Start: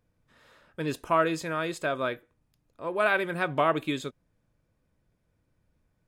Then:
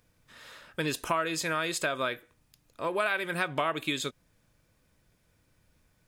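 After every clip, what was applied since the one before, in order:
tilt shelving filter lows −5.5 dB, about 1,500 Hz
downward compressor 4 to 1, threshold −36 dBFS, peak gain reduction 13.5 dB
level +8.5 dB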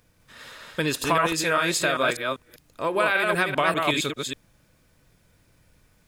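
delay that plays each chunk backwards 197 ms, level −2.5 dB
level +5.5 dB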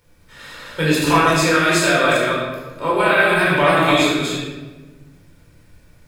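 rectangular room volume 820 cubic metres, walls mixed, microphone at 4.5 metres
level −2 dB

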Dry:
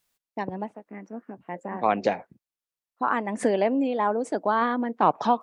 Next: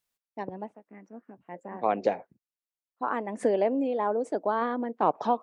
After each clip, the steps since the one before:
dynamic equaliser 470 Hz, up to +8 dB, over −36 dBFS, Q 0.74
level −8.5 dB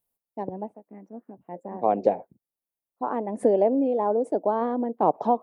flat-topped bell 3,000 Hz −13 dB 3 octaves
level +4.5 dB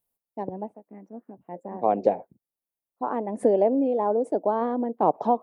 no processing that can be heard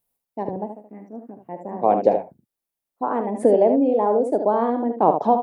ambience of single reflections 43 ms −13.5 dB, 75 ms −7.5 dB
level +4 dB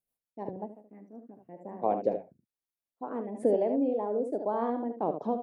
rotating-speaker cabinet horn 6 Hz, later 1 Hz, at 0:00.91
level −8.5 dB

